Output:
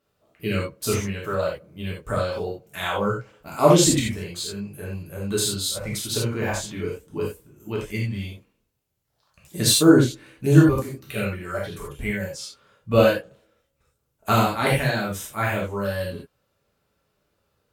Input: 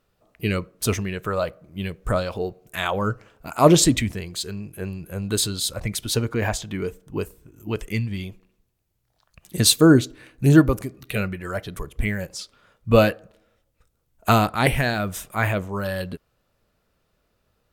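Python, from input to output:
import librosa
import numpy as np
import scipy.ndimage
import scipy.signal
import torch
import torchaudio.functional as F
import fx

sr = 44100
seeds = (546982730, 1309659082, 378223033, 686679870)

y = scipy.signal.sosfilt(scipy.signal.butter(2, 68.0, 'highpass', fs=sr, output='sos'), x)
y = fx.rev_gated(y, sr, seeds[0], gate_ms=110, shape='flat', drr_db=-4.5)
y = y * librosa.db_to_amplitude(-6.5)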